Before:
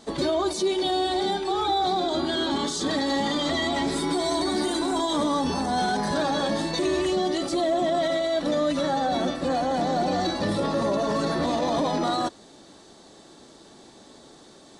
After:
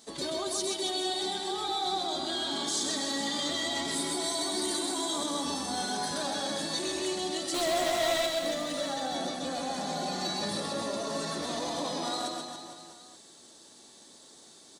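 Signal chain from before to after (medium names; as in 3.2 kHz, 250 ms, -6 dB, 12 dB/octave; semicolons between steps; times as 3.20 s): high-pass 98 Hz 6 dB/octave; pre-emphasis filter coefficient 0.8; 7.54–8.26 s: overdrive pedal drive 32 dB, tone 5.1 kHz, clips at -26 dBFS; 9.58–10.51 s: comb 4.9 ms, depth 57%; on a send: reverse bouncing-ball echo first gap 130 ms, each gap 1.15×, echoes 5; on the sum: trim +2 dB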